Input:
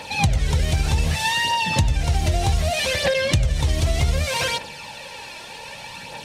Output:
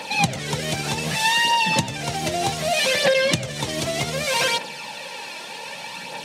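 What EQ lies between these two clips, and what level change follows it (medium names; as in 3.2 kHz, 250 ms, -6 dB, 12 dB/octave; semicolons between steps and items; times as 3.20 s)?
high-pass 160 Hz 24 dB/octave; +2.5 dB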